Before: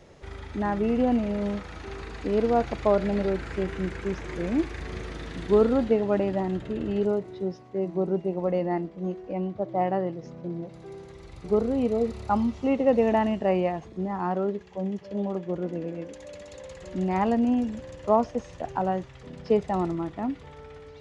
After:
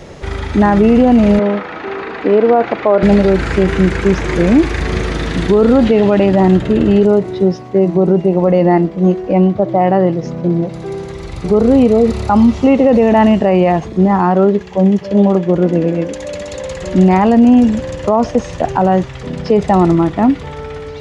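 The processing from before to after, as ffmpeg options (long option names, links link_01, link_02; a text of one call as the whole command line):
ffmpeg -i in.wav -filter_complex "[0:a]asettb=1/sr,asplit=3[link_01][link_02][link_03];[link_01]atrim=end=1.394[link_04];[link_02]atrim=start=1.39:end=3.03,asetpts=PTS-STARTPTS,afade=type=in:duration=0.004:curve=qsin,afade=type=out:start_time=1.636:duration=0.004:curve=qsin,highpass=300,lowpass=2400[link_05];[link_03]atrim=start=3.026[link_06];[link_04][link_05]acrossfade=duration=0.004:curve1=hsin:curve2=qsin[link_07];[link_07][link_06]acrossfade=duration=0.004:curve1=qsin:curve2=hsin,asettb=1/sr,asplit=3[link_08][link_09][link_10];[link_08]atrim=end=5.854[link_11];[link_09]atrim=start=5.85:end=6.26,asetpts=PTS-STARTPTS,afade=type=in:duration=0.004:curve=qsin,afade=type=out:start_time=0.406:duration=0.004:curve=qsin,equalizer=frequency=3000:width_type=o:width=1.3:gain=6[link_12];[link_10]atrim=start=6.256[link_13];[link_11][link_12]acrossfade=duration=0.004:curve1=hsin:curve2=qsin[link_14];[link_14][link_13]acrossfade=duration=0.004:curve1=qsin:curve2=hsin,equalizer=frequency=180:width_type=o:width=0.77:gain=2,alimiter=level_in=19dB:limit=-1dB:release=50:level=0:latency=1,volume=-1dB" out.wav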